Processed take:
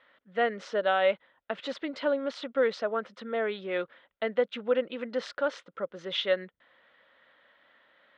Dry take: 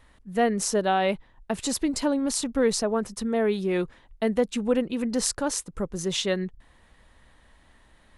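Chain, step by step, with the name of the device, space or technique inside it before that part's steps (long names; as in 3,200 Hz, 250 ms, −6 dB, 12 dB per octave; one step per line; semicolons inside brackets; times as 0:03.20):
phone earpiece (loudspeaker in its box 350–3,700 Hz, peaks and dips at 380 Hz −4 dB, 550 Hz +9 dB, 850 Hz −3 dB, 1,400 Hz +9 dB, 2,000 Hz +5 dB, 3,300 Hz +7 dB)
level −5 dB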